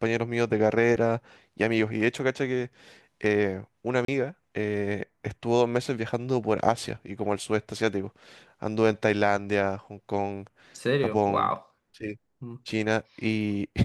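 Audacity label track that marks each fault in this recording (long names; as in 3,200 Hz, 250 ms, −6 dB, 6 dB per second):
4.050000	4.080000	drop-out 33 ms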